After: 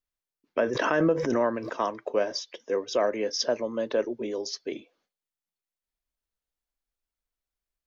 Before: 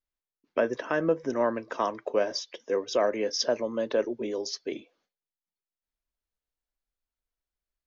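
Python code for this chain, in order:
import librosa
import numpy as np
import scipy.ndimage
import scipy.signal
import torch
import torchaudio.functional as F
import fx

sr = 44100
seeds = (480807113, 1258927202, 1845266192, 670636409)

y = fx.pre_swell(x, sr, db_per_s=23.0, at=(0.66, 1.76))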